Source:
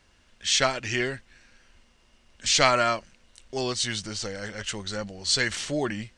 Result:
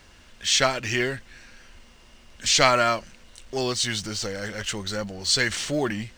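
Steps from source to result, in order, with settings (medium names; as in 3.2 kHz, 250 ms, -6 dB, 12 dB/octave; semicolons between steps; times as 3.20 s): companding laws mixed up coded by mu; trim +1.5 dB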